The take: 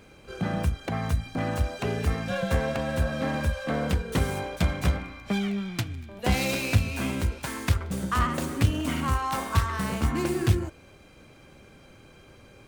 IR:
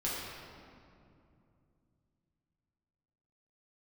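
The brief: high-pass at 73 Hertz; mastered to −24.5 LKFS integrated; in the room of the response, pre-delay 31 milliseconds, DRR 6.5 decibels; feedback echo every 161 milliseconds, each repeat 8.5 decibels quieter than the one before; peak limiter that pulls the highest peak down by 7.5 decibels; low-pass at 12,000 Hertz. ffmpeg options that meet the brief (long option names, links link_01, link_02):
-filter_complex "[0:a]highpass=73,lowpass=12000,alimiter=limit=-17.5dB:level=0:latency=1,aecho=1:1:161|322|483|644:0.376|0.143|0.0543|0.0206,asplit=2[link_01][link_02];[1:a]atrim=start_sample=2205,adelay=31[link_03];[link_02][link_03]afir=irnorm=-1:irlink=0,volume=-12dB[link_04];[link_01][link_04]amix=inputs=2:normalize=0,volume=3dB"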